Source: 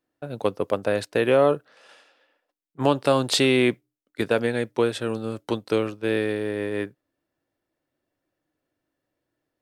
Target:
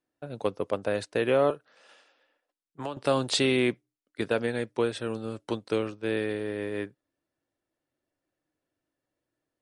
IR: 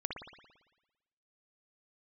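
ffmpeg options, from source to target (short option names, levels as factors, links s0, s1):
-filter_complex "[0:a]asettb=1/sr,asplit=3[s0][s1][s2];[s0]atrim=end=1.504[s3];[s1]atrim=start=1.5:end=2.97,asetpts=PTS-STARTPTS,afade=t=in:d=0.004:c=qsin,afade=t=out:st=1.466:d=0.004:c=qsin,acrossover=split=580|3000[s4][s5][s6];[s4]acompressor=threshold=0.02:ratio=4[s7];[s5]acompressor=threshold=0.0282:ratio=4[s8];[s6]acompressor=threshold=0.00282:ratio=4[s9];[s7][s8][s9]amix=inputs=3:normalize=0[s10];[s2]atrim=start=2.966[s11];[s3][s10]acrossfade=d=0.004:c1=hsin:c2=qsin[s12];[s12][s11]acrossfade=d=0.004:c1=qsin:c2=hsin,volume=0.596" -ar 48000 -c:a libmp3lame -b:a 48k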